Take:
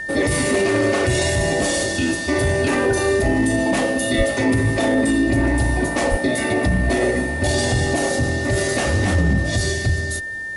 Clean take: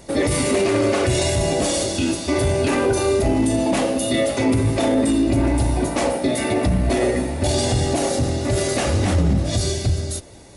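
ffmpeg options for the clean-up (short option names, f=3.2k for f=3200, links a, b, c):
-filter_complex "[0:a]bandreject=f=1.8k:w=30,asplit=3[a][b][c];[a]afade=t=out:st=4.17:d=0.02[d];[b]highpass=f=140:w=0.5412,highpass=f=140:w=1.3066,afade=t=in:st=4.17:d=0.02,afade=t=out:st=4.29:d=0.02[e];[c]afade=t=in:st=4.29:d=0.02[f];[d][e][f]amix=inputs=3:normalize=0,asplit=3[g][h][i];[g]afade=t=out:st=6.1:d=0.02[j];[h]highpass=f=140:w=0.5412,highpass=f=140:w=1.3066,afade=t=in:st=6.1:d=0.02,afade=t=out:st=6.22:d=0.02[k];[i]afade=t=in:st=6.22:d=0.02[l];[j][k][l]amix=inputs=3:normalize=0"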